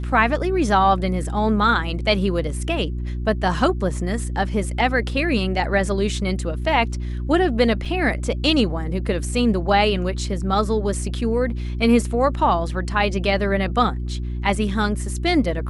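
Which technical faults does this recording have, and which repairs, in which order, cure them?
mains hum 60 Hz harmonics 6 −26 dBFS
0:07.85: drop-out 4.7 ms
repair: hum removal 60 Hz, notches 6
repair the gap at 0:07.85, 4.7 ms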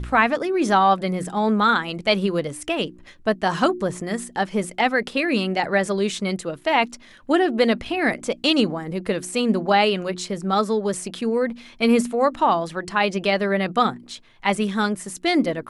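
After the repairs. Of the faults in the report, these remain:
none of them is left

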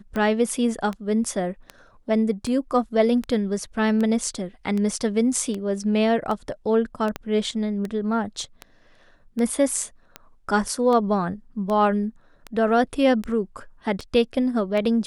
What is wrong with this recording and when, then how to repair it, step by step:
scratch tick 78 rpm −17 dBFS
0:07.16: click −14 dBFS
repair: click removal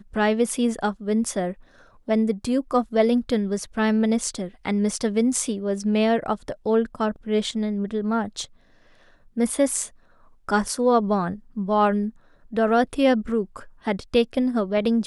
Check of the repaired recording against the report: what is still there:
0:07.16: click

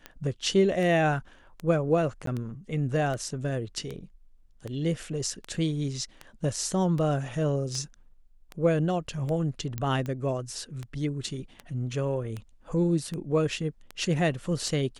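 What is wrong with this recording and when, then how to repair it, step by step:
scratch tick 78 rpm −22 dBFS
0:02.26–0:02.27: drop-out 13 ms
0:09.78: click −18 dBFS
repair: click removal
repair the gap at 0:02.26, 13 ms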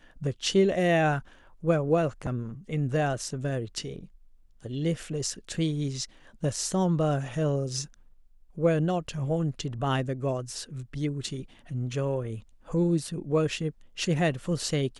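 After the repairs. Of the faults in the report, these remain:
none of them is left

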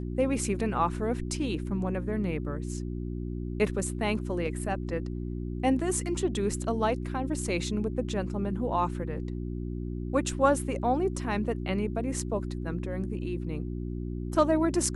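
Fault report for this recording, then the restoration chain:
mains hum 60 Hz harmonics 6 −34 dBFS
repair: hum removal 60 Hz, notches 6

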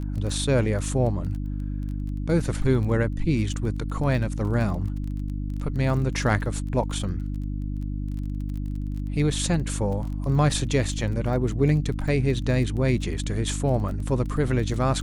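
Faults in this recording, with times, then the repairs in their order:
surface crackle 22 per second −32 dBFS
mains hum 50 Hz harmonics 6 −29 dBFS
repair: click removal
hum removal 50 Hz, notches 6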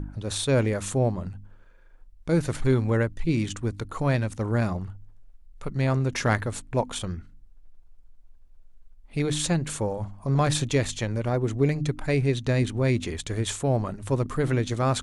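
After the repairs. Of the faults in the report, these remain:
none of them is left

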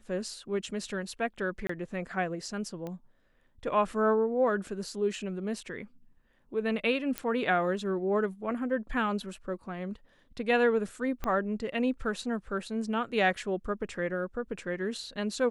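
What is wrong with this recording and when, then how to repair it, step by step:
0:01.67–0:01.69: drop-out 24 ms
0:02.87: click −26 dBFS
0:07.18: click −15 dBFS
0:11.24: click −19 dBFS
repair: click removal
repair the gap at 0:01.67, 24 ms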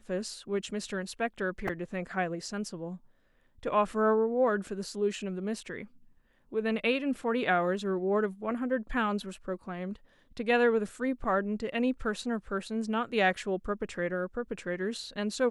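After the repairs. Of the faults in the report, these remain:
0:11.24: click

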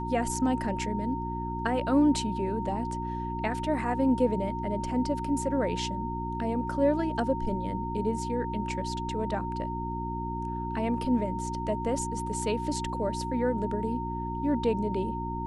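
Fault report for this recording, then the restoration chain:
mains hum 60 Hz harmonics 6 −35 dBFS
whistle 920 Hz −34 dBFS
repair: hum removal 60 Hz, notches 6
notch filter 920 Hz, Q 30

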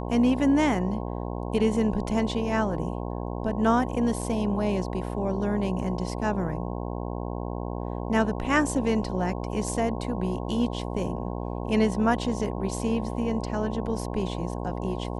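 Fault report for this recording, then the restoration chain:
mains buzz 60 Hz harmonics 18 −32 dBFS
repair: hum removal 60 Hz, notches 18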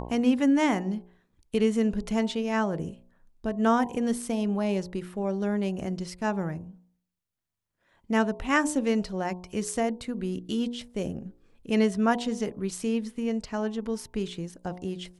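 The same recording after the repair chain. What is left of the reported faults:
none of them is left

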